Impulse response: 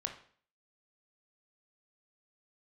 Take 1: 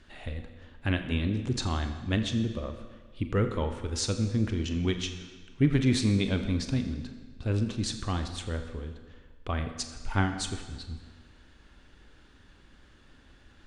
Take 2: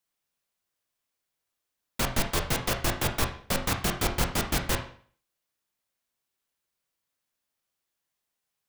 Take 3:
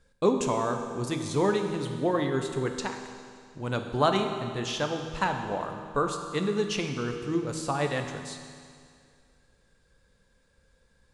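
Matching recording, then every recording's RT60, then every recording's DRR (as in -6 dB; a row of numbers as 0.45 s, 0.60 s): 2; 1.5 s, 0.50 s, 2.2 s; 6.5 dB, 3.5 dB, 4.5 dB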